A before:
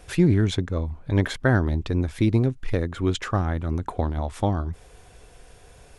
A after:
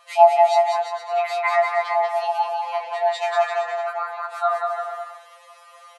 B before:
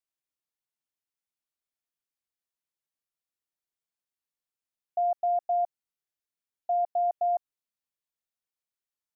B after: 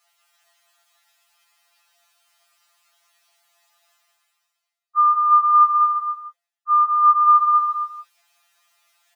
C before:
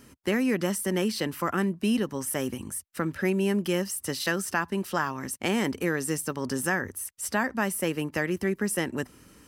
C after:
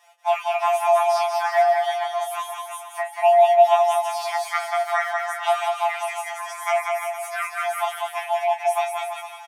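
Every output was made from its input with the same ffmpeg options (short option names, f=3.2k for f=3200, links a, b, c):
-filter_complex "[0:a]highpass=f=44:w=0.5412,highpass=f=44:w=1.3066,highshelf=f=6k:g=-10.5,areverse,acompressor=mode=upward:threshold=-43dB:ratio=2.5,areverse,flanger=delay=3.9:depth=9.2:regen=55:speed=1.2:shape=triangular,afreqshift=500,asplit=2[a][b];[b]adelay=19,volume=-5.5dB[c];[a][c]amix=inputs=2:normalize=0,aecho=1:1:190|342|463.6|560.9|638.7:0.631|0.398|0.251|0.158|0.1,afftfilt=real='re*2.83*eq(mod(b,8),0)':imag='im*2.83*eq(mod(b,8),0)':win_size=2048:overlap=0.75,volume=6.5dB"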